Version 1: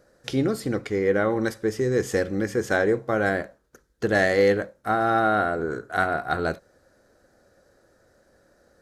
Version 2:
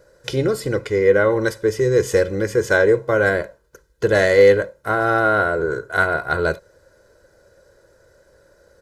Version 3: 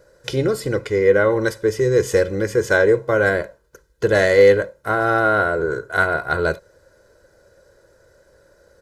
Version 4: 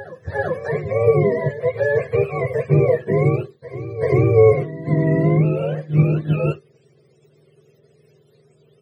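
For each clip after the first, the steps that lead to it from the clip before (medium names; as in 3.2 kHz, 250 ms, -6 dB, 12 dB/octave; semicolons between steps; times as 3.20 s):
comb 2 ms, depth 66%; trim +4 dB
no audible change
spectrum inverted on a logarithmic axis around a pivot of 470 Hz; vibrato 0.39 Hz 13 cents; reverse echo 387 ms -14 dB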